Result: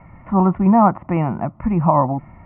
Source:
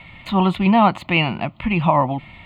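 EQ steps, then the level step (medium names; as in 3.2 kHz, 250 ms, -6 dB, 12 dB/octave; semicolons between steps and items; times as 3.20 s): inverse Chebyshev low-pass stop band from 4 kHz, stop band 50 dB; distance through air 380 m; +2.5 dB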